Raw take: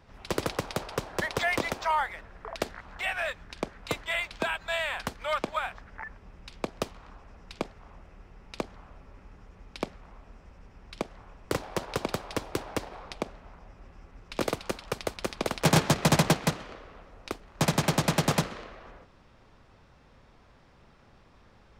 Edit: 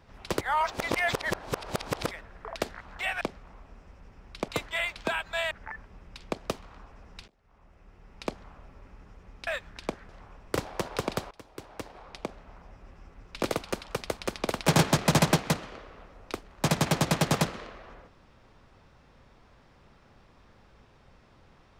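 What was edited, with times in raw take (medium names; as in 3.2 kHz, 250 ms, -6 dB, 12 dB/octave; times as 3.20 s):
0.41–2.11 s: reverse
3.21–3.83 s: swap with 9.79–11.06 s
4.86–5.83 s: delete
7.60–8.57 s: fade in
12.28–13.55 s: fade in, from -23 dB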